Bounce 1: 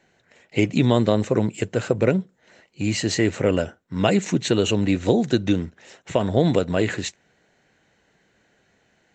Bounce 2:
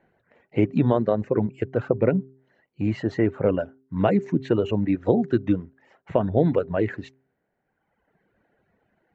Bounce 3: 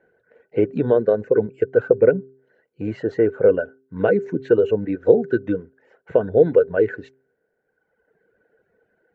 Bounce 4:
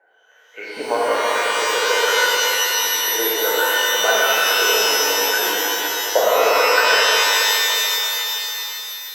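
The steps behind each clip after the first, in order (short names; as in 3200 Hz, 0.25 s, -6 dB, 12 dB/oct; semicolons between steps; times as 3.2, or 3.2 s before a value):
LPF 1400 Hz 12 dB/oct; reverb removal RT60 1.4 s; de-hum 132.2 Hz, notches 3
small resonant body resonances 460/1500 Hz, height 17 dB, ringing for 30 ms; gain -5.5 dB
delay with a stepping band-pass 0.101 s, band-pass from 490 Hz, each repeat 0.7 oct, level -3.5 dB; LFO high-pass saw up 1.3 Hz 760–1800 Hz; shimmer reverb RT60 3.4 s, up +12 st, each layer -2 dB, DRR -7 dB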